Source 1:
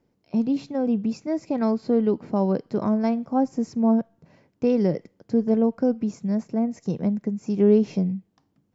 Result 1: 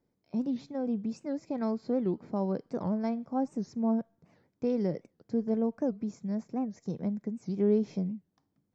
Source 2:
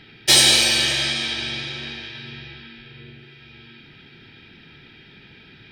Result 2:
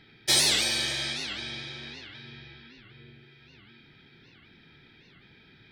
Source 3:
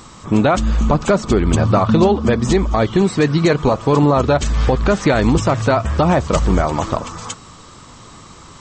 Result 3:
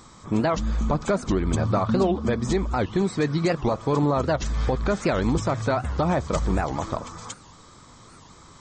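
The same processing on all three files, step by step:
notch filter 2,800 Hz, Q 6.5
wow of a warped record 78 rpm, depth 250 cents
level −8.5 dB

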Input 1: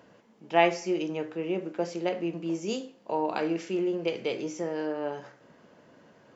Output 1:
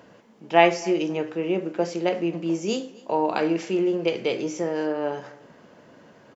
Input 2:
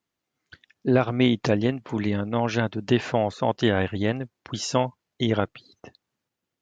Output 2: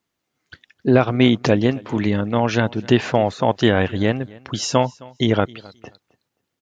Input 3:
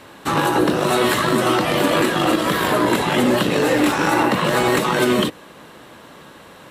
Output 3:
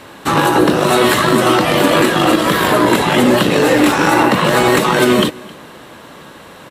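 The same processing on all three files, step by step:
repeating echo 264 ms, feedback 19%, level −23 dB
level +5.5 dB

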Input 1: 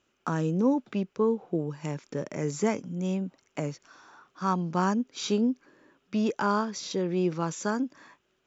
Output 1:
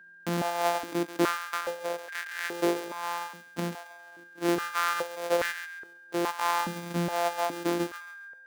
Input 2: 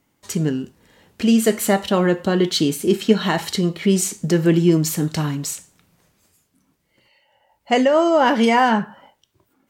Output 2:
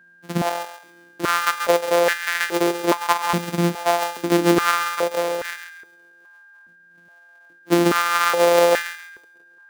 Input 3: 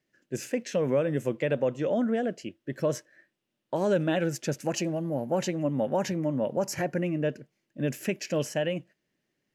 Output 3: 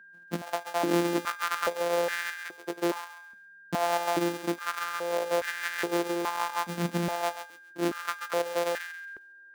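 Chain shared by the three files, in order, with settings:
samples sorted by size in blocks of 256 samples
feedback echo with a high-pass in the loop 136 ms, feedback 29%, high-pass 930 Hz, level −8 dB
steady tone 1,600 Hz −47 dBFS
high-pass on a step sequencer 2.4 Hz 220–1,700 Hz
level −3 dB

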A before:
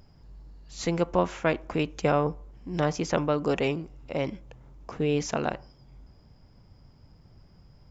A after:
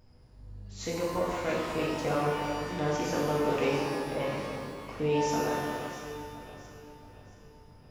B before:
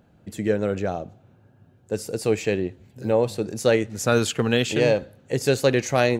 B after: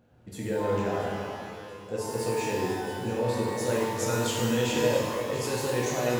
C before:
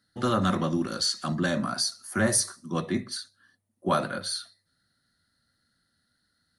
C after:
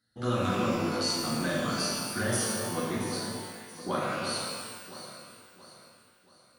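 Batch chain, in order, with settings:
brickwall limiter −17 dBFS
delay that swaps between a low-pass and a high-pass 339 ms, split 1,600 Hz, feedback 63%, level −8 dB
reverb with rising layers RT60 1.4 s, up +12 semitones, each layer −8 dB, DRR −4.5 dB
level −7.5 dB

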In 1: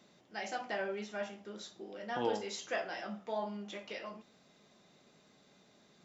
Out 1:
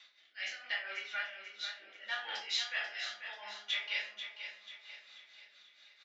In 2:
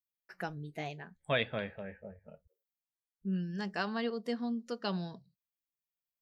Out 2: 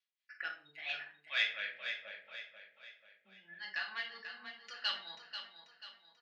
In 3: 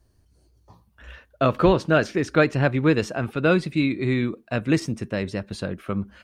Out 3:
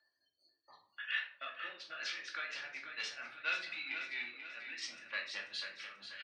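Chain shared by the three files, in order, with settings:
gate on every frequency bin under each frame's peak −30 dB strong
reversed playback
downward compressor 10 to 1, threshold −33 dBFS
reversed playback
amplitude tremolo 4.3 Hz, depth 86%
rotating-speaker cabinet horn 0.75 Hz
soft clipping −35 dBFS
flat-topped band-pass 2,700 Hz, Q 1
repeating echo 488 ms, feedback 44%, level −9 dB
rectangular room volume 430 cubic metres, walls furnished, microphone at 2.4 metres
level +14 dB

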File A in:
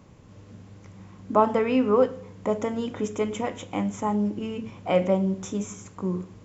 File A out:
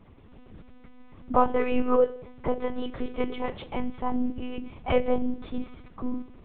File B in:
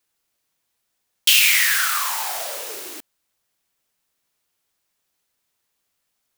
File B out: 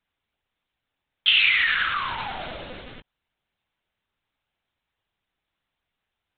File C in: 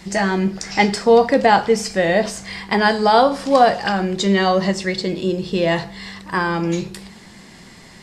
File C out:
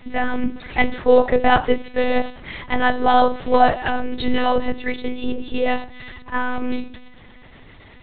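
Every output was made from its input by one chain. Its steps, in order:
one-pitch LPC vocoder at 8 kHz 250 Hz
level −1 dB

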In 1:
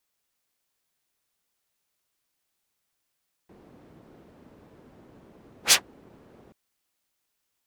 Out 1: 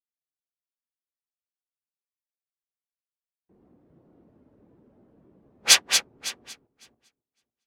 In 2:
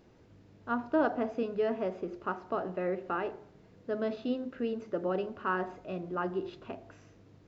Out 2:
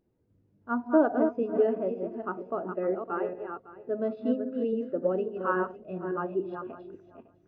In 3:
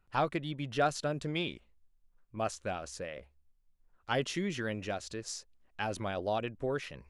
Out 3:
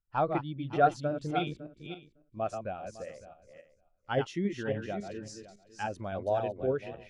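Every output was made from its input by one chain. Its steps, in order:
feedback delay that plays each chunk backwards 278 ms, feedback 43%, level −4 dB
every bin expanded away from the loudest bin 1.5 to 1
level +4 dB

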